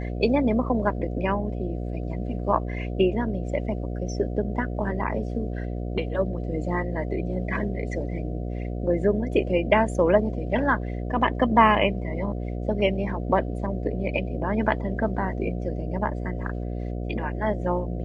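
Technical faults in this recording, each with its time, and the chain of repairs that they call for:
mains buzz 60 Hz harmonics 12 −30 dBFS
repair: hum removal 60 Hz, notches 12

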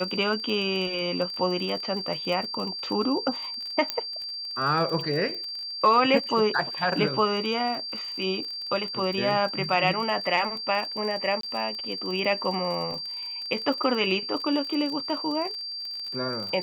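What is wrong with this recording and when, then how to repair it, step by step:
surface crackle 34 per second −32 dBFS
whistle 4,700 Hz −32 dBFS
0:03.90: click −10 dBFS
0:11.41–0:11.43: drop-out 23 ms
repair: click removal
notch filter 4,700 Hz, Q 30
repair the gap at 0:11.41, 23 ms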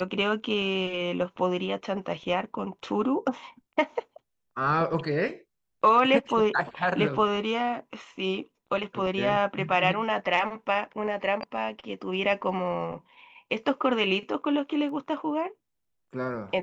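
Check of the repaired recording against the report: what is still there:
none of them is left

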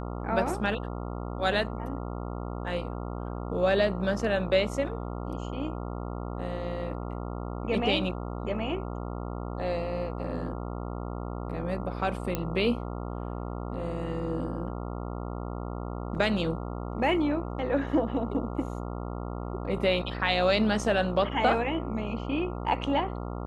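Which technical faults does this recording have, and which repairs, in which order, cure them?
mains buzz 60 Hz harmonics 23 −35 dBFS
0:12.35: click −14 dBFS
0:16.15: drop-out 4.3 ms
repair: click removal
hum removal 60 Hz, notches 23
repair the gap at 0:16.15, 4.3 ms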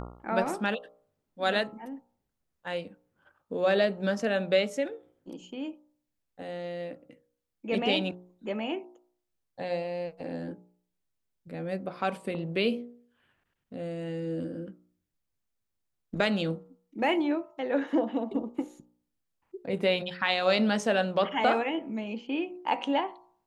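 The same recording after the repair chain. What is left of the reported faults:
none of them is left

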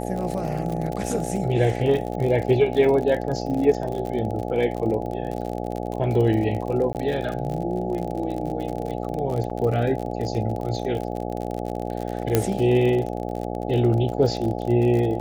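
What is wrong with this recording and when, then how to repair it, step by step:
mains buzz 60 Hz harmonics 14 −29 dBFS
surface crackle 47 per second −28 dBFS
0:06.93–0:06.95: drop-out 18 ms
0:09.50–0:09.51: drop-out 5.3 ms
0:12.35: click −4 dBFS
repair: click removal
hum removal 60 Hz, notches 14
repair the gap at 0:06.93, 18 ms
repair the gap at 0:09.50, 5.3 ms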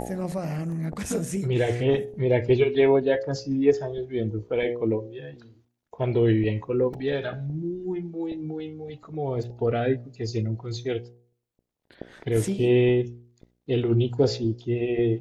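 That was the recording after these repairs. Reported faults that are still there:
none of them is left

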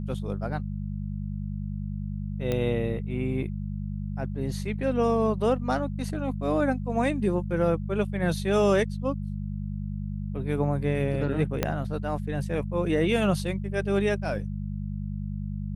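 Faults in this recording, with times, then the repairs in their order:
mains hum 50 Hz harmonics 4 −32 dBFS
0:02.52: click −15 dBFS
0:11.63: click −9 dBFS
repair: click removal
hum removal 50 Hz, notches 4

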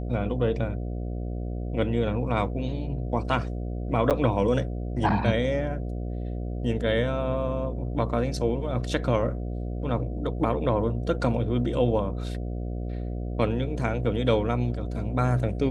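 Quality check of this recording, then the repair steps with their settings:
mains buzz 60 Hz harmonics 12 −31 dBFS
0:04.10–0:04.11: drop-out 7.8 ms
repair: hum removal 60 Hz, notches 12
repair the gap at 0:04.10, 7.8 ms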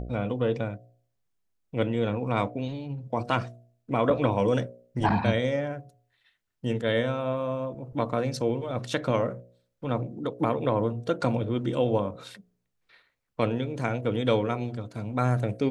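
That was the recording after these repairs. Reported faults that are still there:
none of them is left

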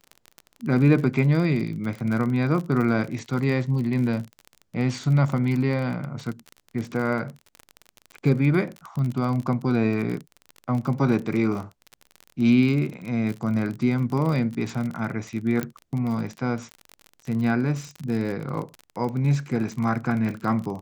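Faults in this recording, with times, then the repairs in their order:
surface crackle 36 per second −29 dBFS
0:15.63: click −13 dBFS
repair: click removal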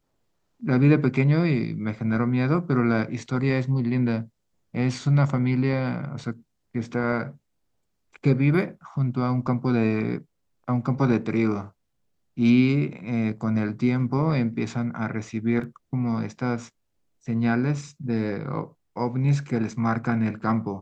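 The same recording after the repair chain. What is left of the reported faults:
0:15.63: click

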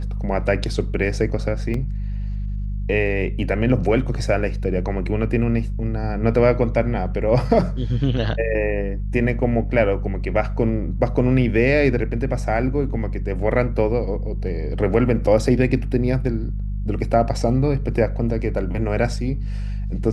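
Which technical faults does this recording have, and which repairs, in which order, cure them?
mains hum 50 Hz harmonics 4 −25 dBFS
0:01.74: drop-out 3.2 ms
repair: hum removal 50 Hz, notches 4
repair the gap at 0:01.74, 3.2 ms

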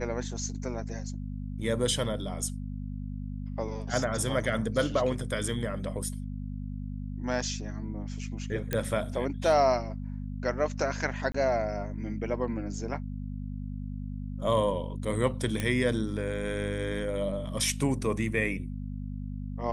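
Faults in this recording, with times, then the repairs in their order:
mains hum 50 Hz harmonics 5 −36 dBFS
0:08.73: click −13 dBFS
0:11.32–0:11.34: drop-out 24 ms
0:15.60: click −16 dBFS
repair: click removal
hum removal 50 Hz, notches 5
repair the gap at 0:11.32, 24 ms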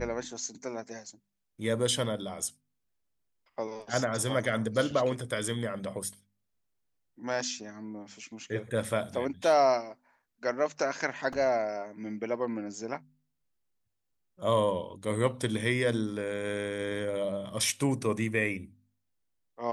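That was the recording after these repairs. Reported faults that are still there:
none of them is left

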